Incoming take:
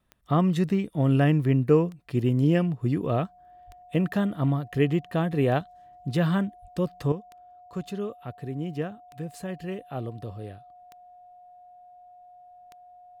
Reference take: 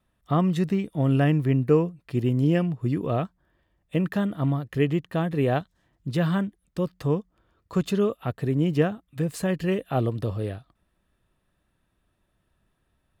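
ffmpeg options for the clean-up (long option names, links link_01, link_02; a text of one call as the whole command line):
ffmpeg -i in.wav -filter_complex "[0:a]adeclick=threshold=4,bandreject=frequency=720:width=30,asplit=3[link_01][link_02][link_03];[link_01]afade=type=out:start_time=3.66:duration=0.02[link_04];[link_02]highpass=frequency=140:width=0.5412,highpass=frequency=140:width=1.3066,afade=type=in:start_time=3.66:duration=0.02,afade=type=out:start_time=3.78:duration=0.02[link_05];[link_03]afade=type=in:start_time=3.78:duration=0.02[link_06];[link_04][link_05][link_06]amix=inputs=3:normalize=0,asplit=3[link_07][link_08][link_09];[link_07]afade=type=out:start_time=6.61:duration=0.02[link_10];[link_08]highpass=frequency=140:width=0.5412,highpass=frequency=140:width=1.3066,afade=type=in:start_time=6.61:duration=0.02,afade=type=out:start_time=6.73:duration=0.02[link_11];[link_09]afade=type=in:start_time=6.73:duration=0.02[link_12];[link_10][link_11][link_12]amix=inputs=3:normalize=0,asetnsamples=nb_out_samples=441:pad=0,asendcmd='7.12 volume volume 9dB',volume=0dB" out.wav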